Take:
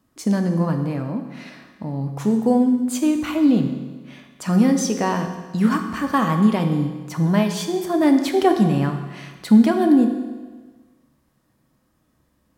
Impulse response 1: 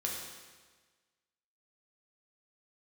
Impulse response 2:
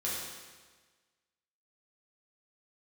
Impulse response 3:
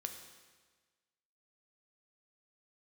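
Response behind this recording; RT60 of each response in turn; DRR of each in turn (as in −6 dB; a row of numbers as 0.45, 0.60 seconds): 3; 1.4, 1.4, 1.4 seconds; −2.5, −7.0, 5.0 decibels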